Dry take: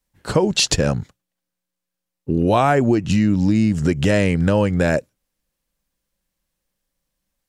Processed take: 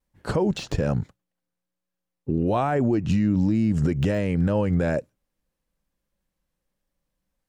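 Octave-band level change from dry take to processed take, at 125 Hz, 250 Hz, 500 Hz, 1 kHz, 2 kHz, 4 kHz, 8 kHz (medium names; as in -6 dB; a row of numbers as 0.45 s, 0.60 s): -4.0 dB, -4.5 dB, -6.0 dB, -7.5 dB, -10.0 dB, -15.5 dB, under -15 dB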